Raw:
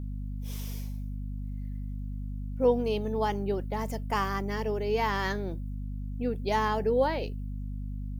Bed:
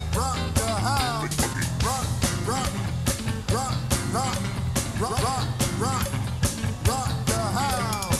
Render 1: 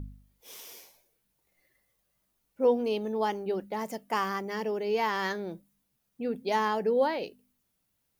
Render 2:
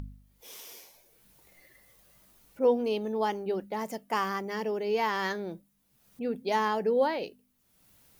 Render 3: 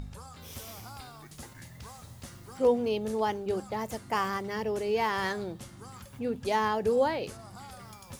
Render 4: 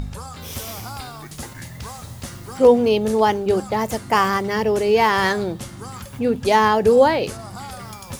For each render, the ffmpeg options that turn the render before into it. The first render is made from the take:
-af "bandreject=f=50:t=h:w=4,bandreject=f=100:t=h:w=4,bandreject=f=150:t=h:w=4,bandreject=f=200:t=h:w=4,bandreject=f=250:t=h:w=4"
-af "acompressor=mode=upward:threshold=0.00501:ratio=2.5"
-filter_complex "[1:a]volume=0.0841[s0];[0:a][s0]amix=inputs=2:normalize=0"
-af "volume=3.98,alimiter=limit=0.708:level=0:latency=1"

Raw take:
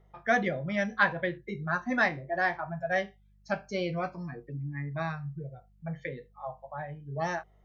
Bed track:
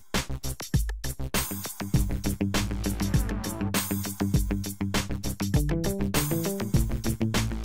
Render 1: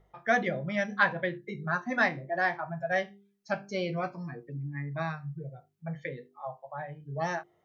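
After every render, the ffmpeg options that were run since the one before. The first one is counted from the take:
-af "bandreject=f=50:t=h:w=4,bandreject=f=100:t=h:w=4,bandreject=f=150:t=h:w=4,bandreject=f=200:t=h:w=4,bandreject=f=250:t=h:w=4,bandreject=f=300:t=h:w=4,bandreject=f=350:t=h:w=4,bandreject=f=400:t=h:w=4"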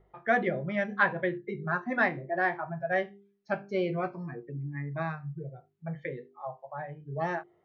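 -af "lowpass=2700,equalizer=f=380:t=o:w=0.32:g=7.5"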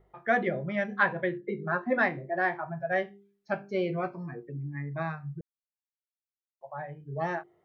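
-filter_complex "[0:a]asplit=3[s0][s1][s2];[s0]afade=t=out:st=1.4:d=0.02[s3];[s1]highpass=150,equalizer=f=210:t=q:w=4:g=4,equalizer=f=310:t=q:w=4:g=4,equalizer=f=520:t=q:w=4:g=10,lowpass=f=4400:w=0.5412,lowpass=f=4400:w=1.3066,afade=t=in:st=1.4:d=0.02,afade=t=out:st=1.97:d=0.02[s4];[s2]afade=t=in:st=1.97:d=0.02[s5];[s3][s4][s5]amix=inputs=3:normalize=0,asplit=3[s6][s7][s8];[s6]atrim=end=5.41,asetpts=PTS-STARTPTS,afade=t=out:st=5.406:d=0.004:c=hsin[s9];[s7]atrim=start=5.41:end=6.61,asetpts=PTS-STARTPTS,volume=0[s10];[s8]atrim=start=6.61,asetpts=PTS-STARTPTS,afade=t=in:d=0.004:c=hsin[s11];[s9][s10][s11]concat=n=3:v=0:a=1"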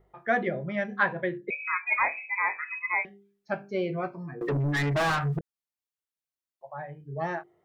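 -filter_complex "[0:a]asettb=1/sr,asplit=3[s0][s1][s2];[s0]atrim=end=1.504[s3];[s1]atrim=start=1.5:end=3.05,asetpts=PTS-STARTPTS,afade=t=in:d=0.004:c=qsin,afade=t=out:st=1.546:d=0.004:c=qsin,lowpass=f=2300:t=q:w=0.5098,lowpass=f=2300:t=q:w=0.6013,lowpass=f=2300:t=q:w=0.9,lowpass=f=2300:t=q:w=2.563,afreqshift=-2700[s4];[s2]atrim=start=3.046[s5];[s3][s4]acrossfade=d=0.004:c1=hsin:c2=qsin[s6];[s6][s5]acrossfade=d=0.004:c1=qsin:c2=hsin,asettb=1/sr,asplit=3[s7][s8][s9];[s7]atrim=end=4.414[s10];[s8]atrim=start=4.41:end=5.39,asetpts=PTS-STARTPTS,afade=t=in:d=0.004:c=qsin,afade=t=out:st=0.976:d=0.004:c=qsin,asplit=2[s11][s12];[s12]highpass=f=720:p=1,volume=56.2,asoftclip=type=tanh:threshold=0.119[s13];[s11][s13]amix=inputs=2:normalize=0,lowpass=f=3900:p=1,volume=0.501[s14];[s9]atrim=start=5.386[s15];[s10][s14]acrossfade=d=0.004:c1=hsin:c2=qsin[s16];[s16][s15]acrossfade=d=0.004:c1=qsin:c2=hsin"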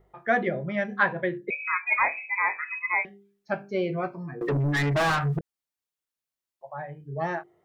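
-af "volume=1.26"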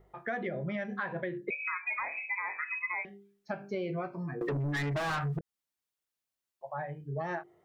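-af "alimiter=limit=0.1:level=0:latency=1:release=123,acompressor=threshold=0.0251:ratio=4"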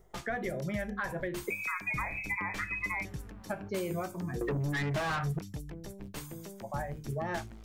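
-filter_complex "[1:a]volume=0.141[s0];[0:a][s0]amix=inputs=2:normalize=0"

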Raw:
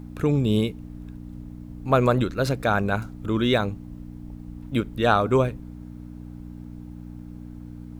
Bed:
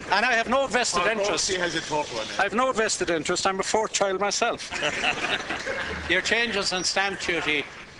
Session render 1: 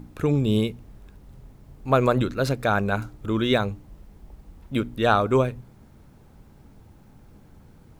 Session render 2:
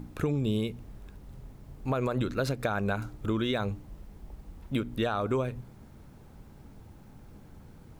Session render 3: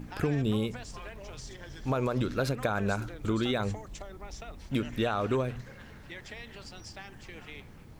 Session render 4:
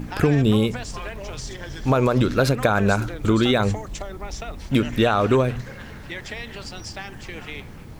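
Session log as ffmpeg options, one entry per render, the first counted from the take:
-af "bandreject=f=60:t=h:w=4,bandreject=f=120:t=h:w=4,bandreject=f=180:t=h:w=4,bandreject=f=240:t=h:w=4,bandreject=f=300:t=h:w=4"
-af "alimiter=limit=0.211:level=0:latency=1:release=170,acompressor=threshold=0.0562:ratio=6"
-filter_complex "[1:a]volume=0.075[s0];[0:a][s0]amix=inputs=2:normalize=0"
-af "volume=3.35"

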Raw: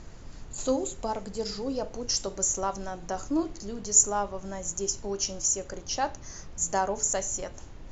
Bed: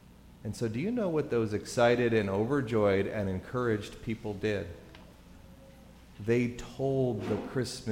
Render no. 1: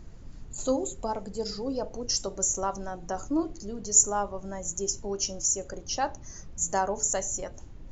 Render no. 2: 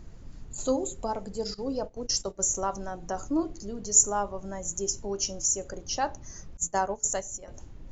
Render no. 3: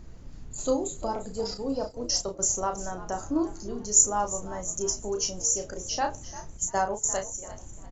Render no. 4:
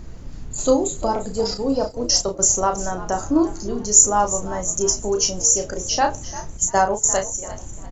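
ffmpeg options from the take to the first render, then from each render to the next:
-af "afftdn=nr=8:nf=-45"
-filter_complex "[0:a]asettb=1/sr,asplit=3[s0][s1][s2];[s0]atrim=end=1.544[s3];[s1]atrim=start=1.54:end=2.56,asetpts=PTS-STARTPTS,afade=t=in:d=0.004:c=qsin,afade=t=out:st=1.016:d=0.004:c=qsin,agate=range=0.178:threshold=0.0141:ratio=16:release=100:detection=peak[s4];[s2]atrim=start=2.556[s5];[s3][s4]acrossfade=d=0.004:c1=hsin:c2=qsin[s6];[s6][s5]acrossfade=d=0.004:c1=qsin:c2=hsin,asettb=1/sr,asplit=3[s7][s8][s9];[s7]atrim=end=6.574[s10];[s8]atrim=start=6.57:end=7.48,asetpts=PTS-STARTPTS,afade=t=in:d=0.004:c=qsin,afade=t=out:st=0.906:d=0.004:c=qsin,agate=range=0.0224:threshold=0.0447:ratio=3:release=100:detection=peak[s11];[s9]atrim=start=7.476[s12];[s10][s11]acrossfade=d=0.004:c1=hsin:c2=qsin[s13];[s13][s12]acrossfade=d=0.004:c1=qsin:c2=hsin"
-filter_complex "[0:a]asplit=2[s0][s1];[s1]adelay=33,volume=0.501[s2];[s0][s2]amix=inputs=2:normalize=0,asplit=4[s3][s4][s5][s6];[s4]adelay=347,afreqshift=67,volume=0.158[s7];[s5]adelay=694,afreqshift=134,volume=0.0507[s8];[s6]adelay=1041,afreqshift=201,volume=0.0162[s9];[s3][s7][s8][s9]amix=inputs=4:normalize=0"
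-af "volume=2.82,alimiter=limit=0.891:level=0:latency=1"

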